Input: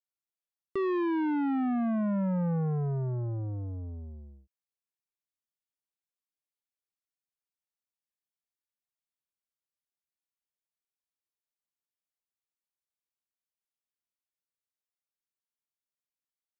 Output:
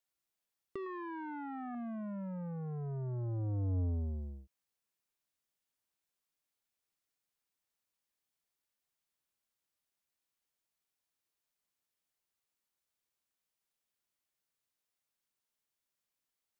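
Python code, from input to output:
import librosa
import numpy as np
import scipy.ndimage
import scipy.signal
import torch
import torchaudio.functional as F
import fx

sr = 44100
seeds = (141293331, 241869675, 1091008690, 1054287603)

y = fx.band_shelf(x, sr, hz=1200.0, db=9.0, octaves=1.7, at=(0.86, 1.75))
y = fx.over_compress(y, sr, threshold_db=-37.0, ratio=-1.0)
y = F.gain(torch.from_numpy(y), -1.5).numpy()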